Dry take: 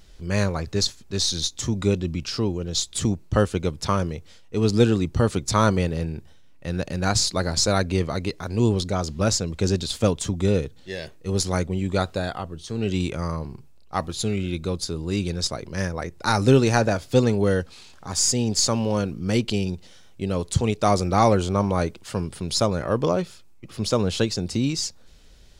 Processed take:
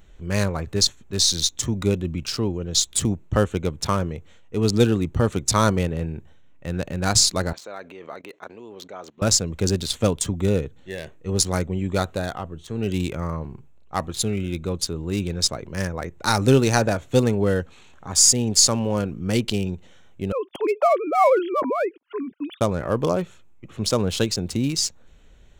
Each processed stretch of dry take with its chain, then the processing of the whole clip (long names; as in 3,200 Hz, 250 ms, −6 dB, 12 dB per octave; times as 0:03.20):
0:07.53–0:09.22: output level in coarse steps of 16 dB + band-pass filter 420–5,000 Hz
0:20.32–0:22.61: three sine waves on the formant tracks + noise gate −43 dBFS, range −25 dB
whole clip: adaptive Wiener filter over 9 samples; high-shelf EQ 4,800 Hz +10.5 dB